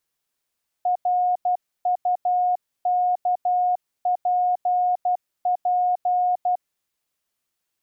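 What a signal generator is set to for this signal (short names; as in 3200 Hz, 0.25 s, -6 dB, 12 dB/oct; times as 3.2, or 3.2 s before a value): Morse "RUKPP" 12 wpm 722 Hz -17.5 dBFS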